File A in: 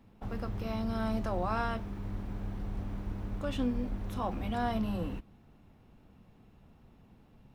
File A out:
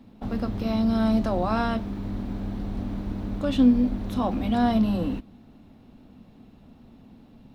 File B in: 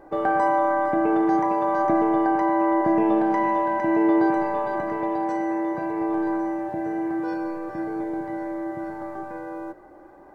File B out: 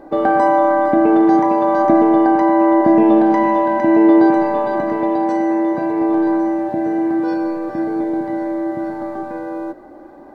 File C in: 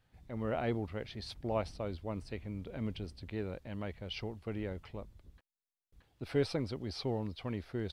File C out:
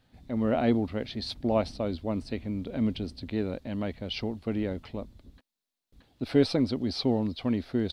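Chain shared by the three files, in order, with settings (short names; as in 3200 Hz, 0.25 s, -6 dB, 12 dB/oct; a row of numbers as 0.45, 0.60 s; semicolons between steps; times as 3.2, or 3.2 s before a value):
fifteen-band EQ 250 Hz +11 dB, 630 Hz +4 dB, 4000 Hz +7 dB; gain +4 dB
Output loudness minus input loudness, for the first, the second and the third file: +10.0, +8.0, +9.0 LU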